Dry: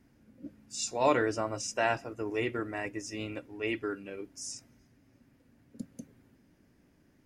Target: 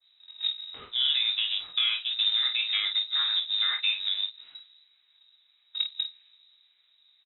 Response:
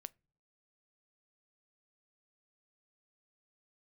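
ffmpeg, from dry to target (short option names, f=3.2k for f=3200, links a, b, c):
-filter_complex "[0:a]afwtdn=0.00631,alimiter=limit=-22.5dB:level=0:latency=1:release=75,acrossover=split=770[a][b];[a]aeval=exprs='val(0)*(1-0.5/2+0.5/2*cos(2*PI*1.7*n/s))':c=same[c];[b]aeval=exprs='val(0)*(1-0.5/2-0.5/2*cos(2*PI*1.7*n/s))':c=same[d];[c][d]amix=inputs=2:normalize=0,acrusher=bits=3:mode=log:mix=0:aa=0.000001,acompressor=threshold=-49dB:ratio=5,aecho=1:1:22|50:0.473|0.398,asplit=2[e][f];[1:a]atrim=start_sample=2205,highshelf=f=5.7k:g=-8.5[g];[f][g]afir=irnorm=-1:irlink=0,volume=21.5dB[h];[e][h]amix=inputs=2:normalize=0,lowpass=f=3.4k:t=q:w=0.5098,lowpass=f=3.4k:t=q:w=0.6013,lowpass=f=3.4k:t=q:w=0.9,lowpass=f=3.4k:t=q:w=2.563,afreqshift=-4000,adynamicequalizer=threshold=0.00501:dfrequency=1600:dqfactor=0.7:tfrequency=1600:tqfactor=0.7:attack=5:release=100:ratio=0.375:range=3:mode=boostabove:tftype=highshelf"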